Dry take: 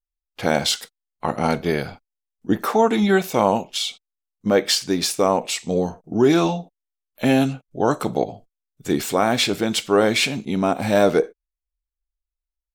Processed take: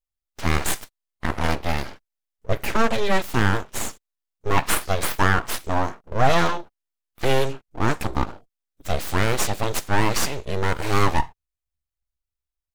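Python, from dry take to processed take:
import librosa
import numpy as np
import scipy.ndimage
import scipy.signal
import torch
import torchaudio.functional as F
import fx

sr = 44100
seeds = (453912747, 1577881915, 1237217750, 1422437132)

y = np.abs(x)
y = fx.dynamic_eq(y, sr, hz=1300.0, q=0.77, threshold_db=-37.0, ratio=4.0, max_db=5, at=(4.57, 6.58))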